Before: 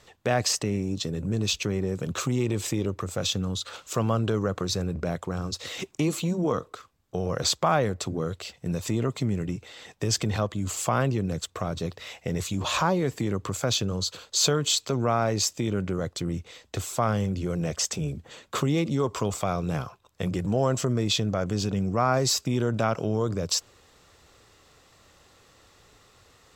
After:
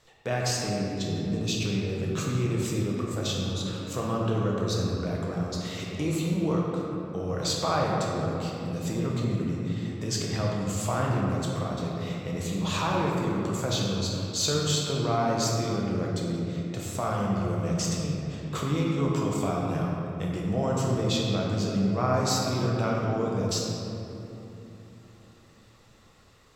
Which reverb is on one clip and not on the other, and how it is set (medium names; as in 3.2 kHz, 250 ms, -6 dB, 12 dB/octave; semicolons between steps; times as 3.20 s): simulated room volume 150 m³, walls hard, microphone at 0.64 m; trim -6.5 dB